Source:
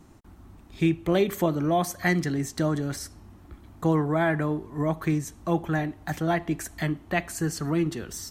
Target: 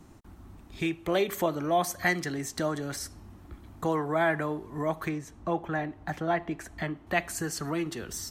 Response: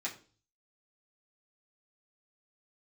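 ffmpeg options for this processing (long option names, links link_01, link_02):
-filter_complex "[0:a]asettb=1/sr,asplit=3[link_01][link_02][link_03];[link_01]atrim=end=5.094[link_04];[link_02]atrim=start=5.09:end=7.07,asetpts=PTS-STARTPTS,afade=type=in:duration=0.004:curve=qsin,afade=type=out:start_time=1.976:duration=0.004:curve=qsin,lowpass=frequency=2100:poles=1[link_05];[link_03]atrim=start=7.066[link_06];[link_04][link_05]acrossfade=duration=0.004:curve1=hsin:curve2=qsin[link_07];[link_07][link_06]acrossfade=duration=0.004:curve1=qsin:curve2=hsin,acrossover=split=400[link_08][link_09];[link_08]acompressor=threshold=-35dB:ratio=6[link_10];[link_10][link_09]amix=inputs=2:normalize=0"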